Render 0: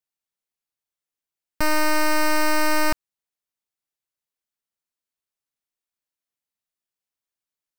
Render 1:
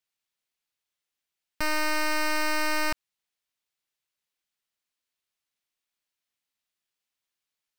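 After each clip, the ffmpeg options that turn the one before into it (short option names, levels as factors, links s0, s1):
-af "equalizer=f=3000:t=o:w=2.2:g=7,alimiter=limit=0.126:level=0:latency=1"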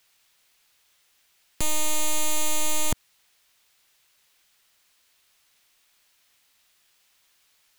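-af "equalizer=f=230:w=0.55:g=-5.5,aeval=exprs='0.15*sin(PI/2*7.94*val(0)/0.15)':c=same"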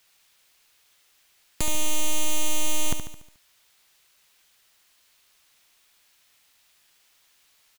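-filter_complex "[0:a]acompressor=threshold=0.0794:ratio=6,asplit=2[s0][s1];[s1]aecho=0:1:72|144|216|288|360|432:0.398|0.203|0.104|0.0528|0.0269|0.0137[s2];[s0][s2]amix=inputs=2:normalize=0,volume=1.19"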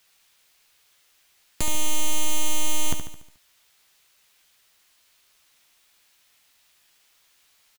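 -filter_complex "[0:a]asplit=2[s0][s1];[s1]adelay=14,volume=0.282[s2];[s0][s2]amix=inputs=2:normalize=0"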